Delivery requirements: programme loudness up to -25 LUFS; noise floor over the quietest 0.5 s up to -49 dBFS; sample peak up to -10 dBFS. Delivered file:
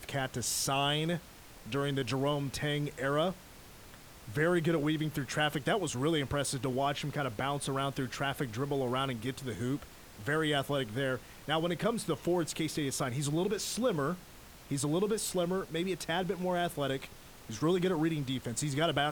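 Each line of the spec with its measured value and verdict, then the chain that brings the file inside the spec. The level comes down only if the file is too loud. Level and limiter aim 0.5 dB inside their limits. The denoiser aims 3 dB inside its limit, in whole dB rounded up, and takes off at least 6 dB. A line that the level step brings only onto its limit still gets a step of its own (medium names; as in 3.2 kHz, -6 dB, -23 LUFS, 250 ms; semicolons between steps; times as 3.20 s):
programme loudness -33.0 LUFS: pass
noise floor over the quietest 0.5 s -52 dBFS: pass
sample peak -17.0 dBFS: pass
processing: none needed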